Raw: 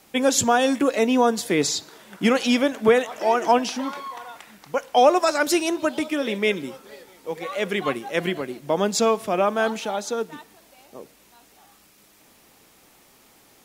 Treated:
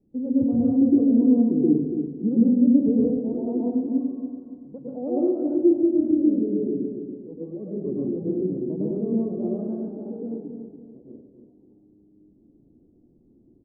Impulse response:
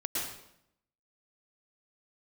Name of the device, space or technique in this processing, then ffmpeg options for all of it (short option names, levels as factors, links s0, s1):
next room: -filter_complex "[0:a]lowpass=f=340:w=0.5412,lowpass=f=340:w=1.3066[s0];[1:a]atrim=start_sample=2205[s1];[s0][s1]afir=irnorm=-1:irlink=0,asettb=1/sr,asplit=3[s2][s3][s4];[s2]atrim=end=1.534[s5];[s3]atrim=start=1.53:end=3.57,asetpts=PTS-STARTPTS,afade=t=in:d=0.004:c=qsin,afade=t=out:st=2.036:d=0.004:c=qsin,lowpass=1100[s6];[s4]atrim=start=3.566[s7];[s5][s6]acrossfade=d=0.004:c1=hsin:c2=qsin[s8];[s8][s7]acrossfade=d=0.004:c1=qsin:c2=hsin,asplit=2[s9][s10];[s10]adelay=284,lowpass=f=2000:p=1,volume=0.398,asplit=2[s11][s12];[s12]adelay=284,lowpass=f=2000:p=1,volume=0.37,asplit=2[s13][s14];[s14]adelay=284,lowpass=f=2000:p=1,volume=0.37,asplit=2[s15][s16];[s16]adelay=284,lowpass=f=2000:p=1,volume=0.37[s17];[s9][s11][s13][s15][s17]amix=inputs=5:normalize=0,volume=0.841"